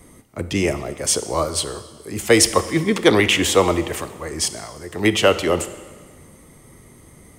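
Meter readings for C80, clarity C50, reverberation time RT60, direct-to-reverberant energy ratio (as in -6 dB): 14.5 dB, 13.0 dB, 1.5 s, 11.0 dB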